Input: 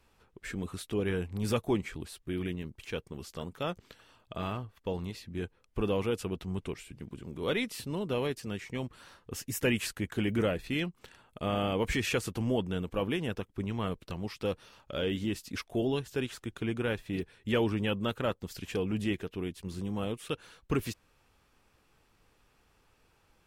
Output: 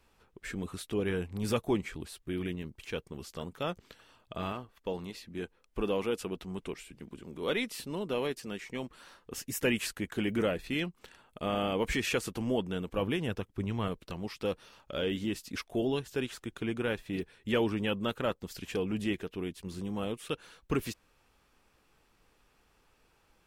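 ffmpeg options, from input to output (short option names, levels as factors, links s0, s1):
-af "asetnsamples=n=441:p=0,asendcmd='4.52 equalizer g -13;9.38 equalizer g -7;12.97 equalizer g 1.5;13.88 equalizer g -5',equalizer=f=100:t=o:w=1:g=-3"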